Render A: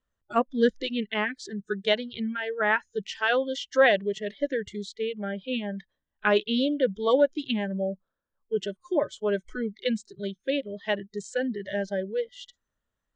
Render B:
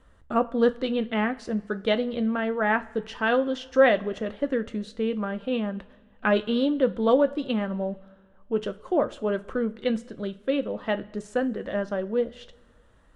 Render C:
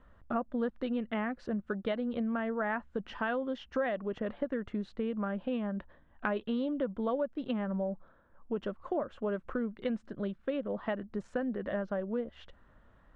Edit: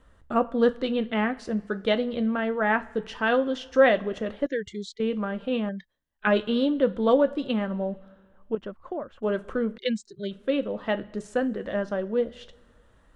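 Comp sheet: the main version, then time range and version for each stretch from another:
B
4.46–5 from A
5.69–6.27 from A
8.55–9.23 from C
9.78–10.31 from A

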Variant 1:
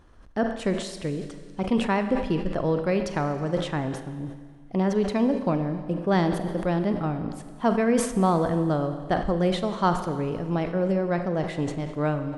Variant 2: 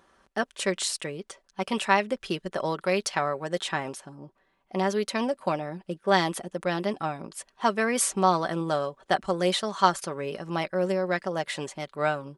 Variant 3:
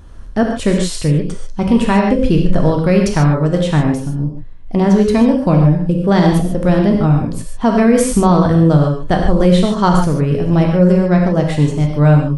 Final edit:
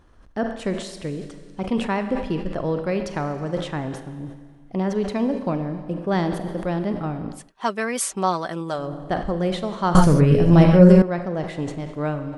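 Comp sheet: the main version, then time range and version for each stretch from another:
1
7.41–8.82 from 2, crossfade 0.24 s
9.95–11.02 from 3

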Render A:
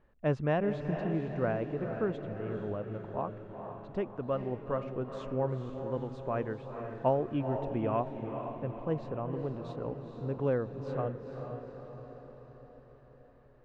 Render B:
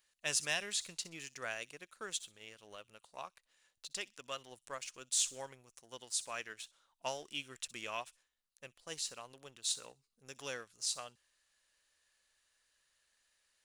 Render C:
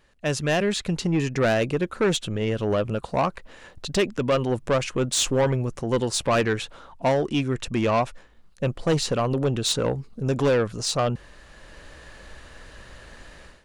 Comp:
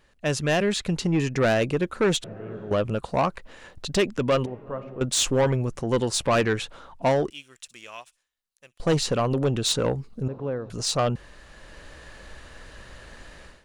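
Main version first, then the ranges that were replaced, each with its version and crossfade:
C
2.24–2.71 from A
4.46–5.01 from A
7.3–8.8 from B
10.28–10.7 from A

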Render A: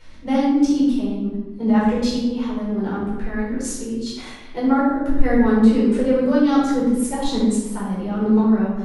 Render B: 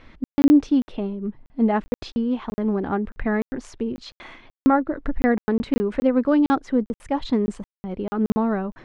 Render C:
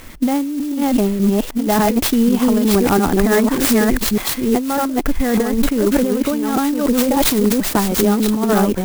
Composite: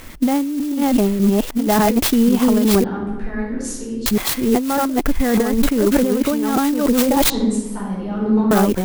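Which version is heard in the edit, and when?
C
2.84–4.06 from A
7.3–8.51 from A
not used: B

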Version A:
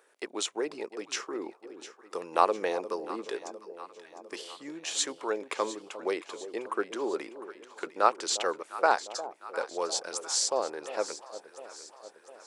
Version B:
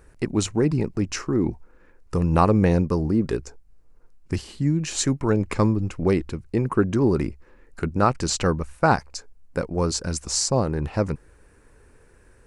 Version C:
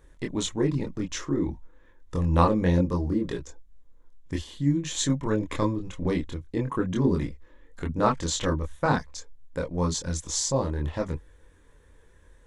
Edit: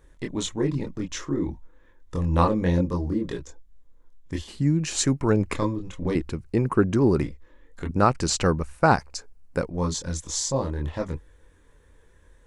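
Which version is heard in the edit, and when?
C
4.48–5.55 from B
6.15–7.23 from B
7.91–9.71 from B
not used: A

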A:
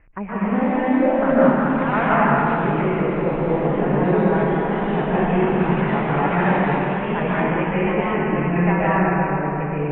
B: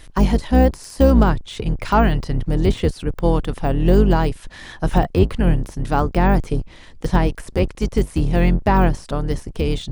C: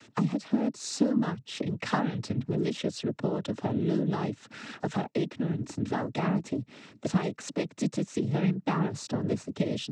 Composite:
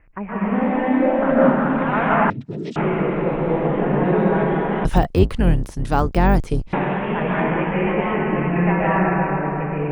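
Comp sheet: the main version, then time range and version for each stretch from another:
A
2.3–2.76 from C
4.85–6.73 from B

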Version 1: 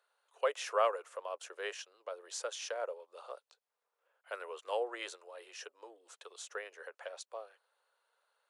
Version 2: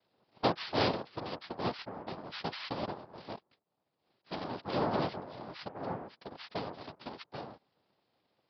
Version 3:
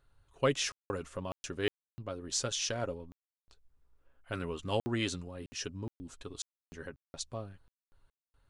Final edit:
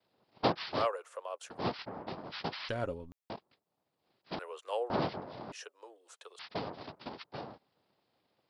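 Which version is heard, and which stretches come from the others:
2
0.79–1.54 from 1, crossfade 0.16 s
2.69–3.3 from 3
4.39–4.9 from 1
5.52–6.39 from 1

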